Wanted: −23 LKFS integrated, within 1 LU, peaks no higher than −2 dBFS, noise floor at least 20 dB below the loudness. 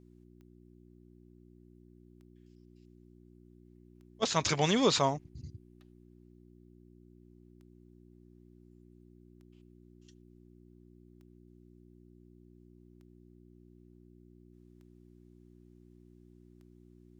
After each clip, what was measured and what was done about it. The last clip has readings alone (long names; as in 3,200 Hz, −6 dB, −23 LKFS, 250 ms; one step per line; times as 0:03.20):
number of clicks 10; mains hum 60 Hz; hum harmonics up to 360 Hz; level of the hum −57 dBFS; integrated loudness −29.5 LKFS; sample peak −13.5 dBFS; target loudness −23.0 LKFS
→ click removal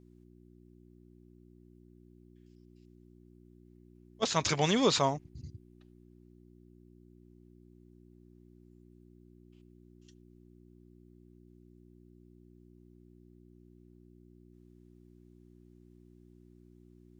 number of clicks 0; mains hum 60 Hz; hum harmonics up to 360 Hz; level of the hum −57 dBFS
→ hum removal 60 Hz, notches 6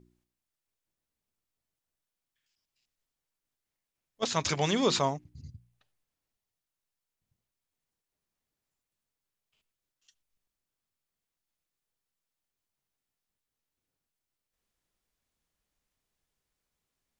mains hum none found; integrated loudness −29.0 LKFS; sample peak −13.0 dBFS; target loudness −23.0 LKFS
→ level +6 dB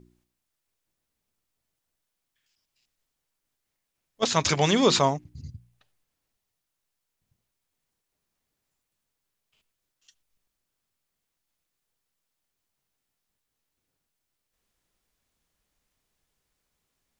integrated loudness −23.0 LKFS; sample peak −7.0 dBFS; background noise floor −83 dBFS